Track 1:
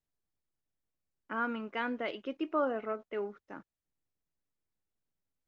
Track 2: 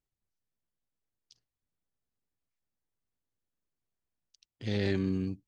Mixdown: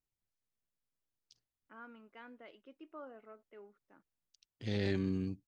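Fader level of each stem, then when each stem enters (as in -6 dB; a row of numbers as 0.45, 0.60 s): -18.5, -4.0 dB; 0.40, 0.00 s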